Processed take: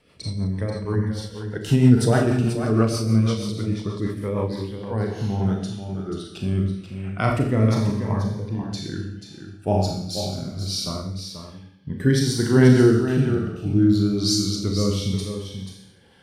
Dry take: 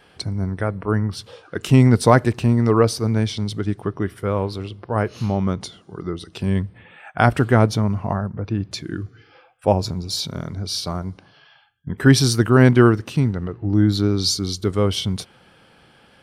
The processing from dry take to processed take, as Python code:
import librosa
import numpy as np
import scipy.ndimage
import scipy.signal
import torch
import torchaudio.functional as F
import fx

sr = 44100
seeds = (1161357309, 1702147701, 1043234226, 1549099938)

p1 = fx.rev_schroeder(x, sr, rt60_s=0.76, comb_ms=28, drr_db=0.5)
p2 = fx.rotary_switch(p1, sr, hz=6.3, then_hz=1.1, switch_at_s=4.28)
p3 = p2 + fx.echo_single(p2, sr, ms=485, db=-9.0, dry=0)
p4 = fx.notch_cascade(p3, sr, direction='falling', hz=0.27)
y = p4 * 10.0 ** (-3.0 / 20.0)